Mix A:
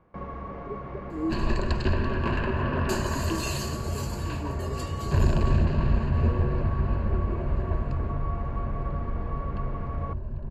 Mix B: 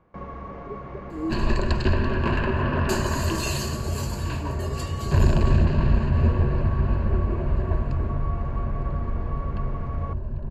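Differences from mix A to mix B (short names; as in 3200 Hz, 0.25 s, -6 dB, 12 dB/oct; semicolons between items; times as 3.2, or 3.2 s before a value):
first sound: remove air absorption 71 m; second sound +3.5 dB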